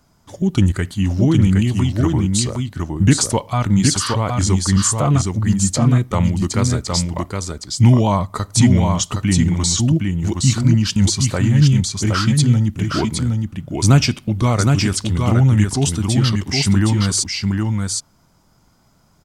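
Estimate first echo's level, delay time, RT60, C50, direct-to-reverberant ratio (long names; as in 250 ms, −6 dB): −4.0 dB, 766 ms, no reverb audible, no reverb audible, no reverb audible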